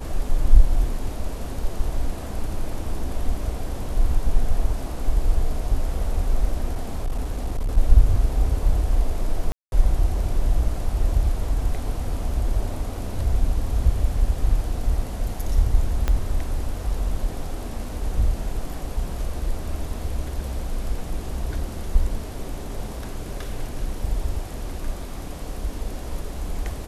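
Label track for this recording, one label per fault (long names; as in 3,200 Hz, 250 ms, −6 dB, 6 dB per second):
6.720000	7.780000	clipping −20 dBFS
9.520000	9.720000	drop-out 201 ms
16.080000	16.080000	click −10 dBFS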